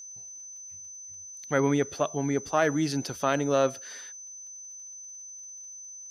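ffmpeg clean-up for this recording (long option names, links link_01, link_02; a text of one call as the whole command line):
ffmpeg -i in.wav -af "adeclick=threshold=4,bandreject=frequency=6100:width=30" out.wav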